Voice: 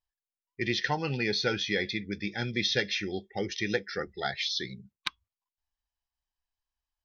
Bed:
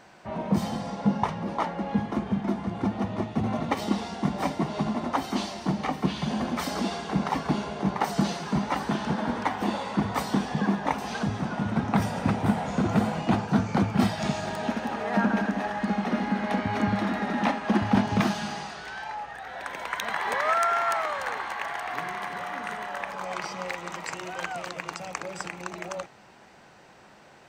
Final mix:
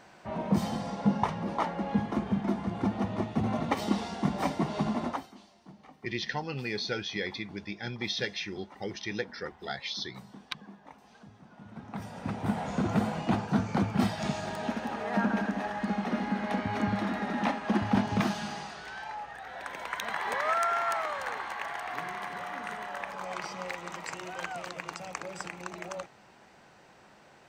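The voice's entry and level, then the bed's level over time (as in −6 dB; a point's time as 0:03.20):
5.45 s, −4.5 dB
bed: 0:05.08 −2 dB
0:05.36 −24.5 dB
0:11.44 −24.5 dB
0:12.62 −4 dB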